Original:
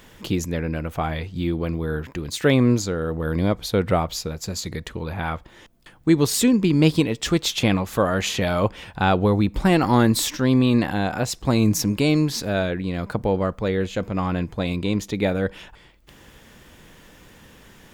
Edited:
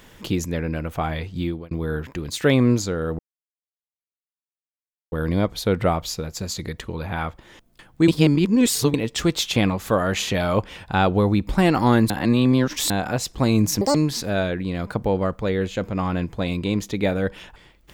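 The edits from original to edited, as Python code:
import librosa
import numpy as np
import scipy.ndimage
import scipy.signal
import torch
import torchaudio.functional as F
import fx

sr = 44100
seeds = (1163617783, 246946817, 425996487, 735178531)

y = fx.edit(x, sr, fx.fade_out_span(start_s=1.42, length_s=0.29),
    fx.insert_silence(at_s=3.19, length_s=1.93),
    fx.reverse_span(start_s=6.15, length_s=0.86),
    fx.reverse_span(start_s=10.17, length_s=0.8),
    fx.speed_span(start_s=11.88, length_s=0.26, speed=1.91), tone=tone)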